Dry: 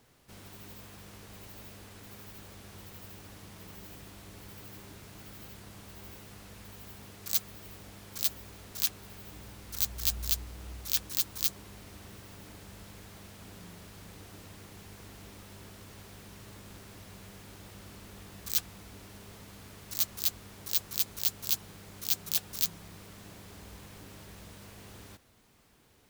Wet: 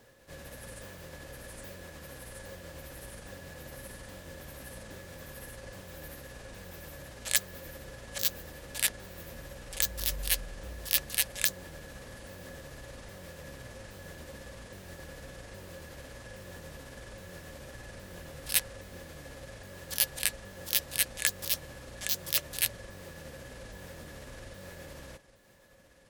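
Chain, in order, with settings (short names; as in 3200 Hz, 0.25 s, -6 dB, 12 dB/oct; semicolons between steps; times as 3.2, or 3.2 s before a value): repeated pitch sweeps -11.5 st, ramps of 0.818 s; small resonant body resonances 540/1700 Hz, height 16 dB, ringing for 60 ms; gain +2.5 dB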